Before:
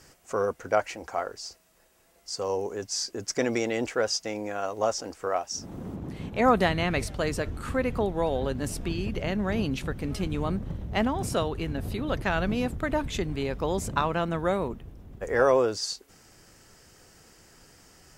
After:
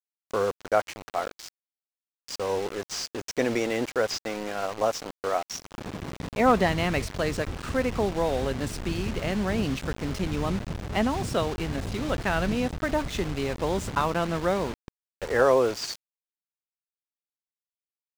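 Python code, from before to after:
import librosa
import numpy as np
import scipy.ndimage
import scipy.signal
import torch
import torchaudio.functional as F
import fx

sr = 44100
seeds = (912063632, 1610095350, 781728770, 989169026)

y = fx.delta_mod(x, sr, bps=64000, step_db=-33.5)
y = scipy.signal.sosfilt(scipy.signal.bessel(2, 6700.0, 'lowpass', norm='mag', fs=sr, output='sos'), y)
y = np.where(np.abs(y) >= 10.0 ** (-38.0 / 20.0), y, 0.0)
y = y * librosa.db_to_amplitude(1.0)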